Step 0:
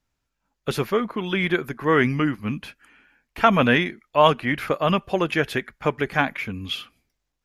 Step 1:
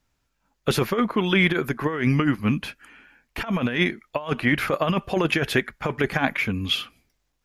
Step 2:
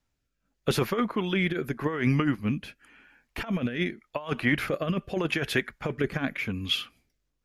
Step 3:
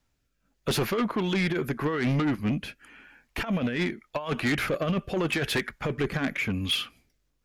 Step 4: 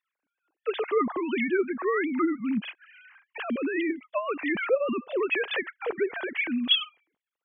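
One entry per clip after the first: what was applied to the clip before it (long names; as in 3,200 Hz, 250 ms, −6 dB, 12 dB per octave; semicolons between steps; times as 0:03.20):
compressor whose output falls as the input rises −22 dBFS, ratio −0.5; level +2 dB
rotating-speaker cabinet horn 0.85 Hz; level −3 dB
soft clipping −25.5 dBFS, distortion −10 dB; level +4.5 dB
three sine waves on the formant tracks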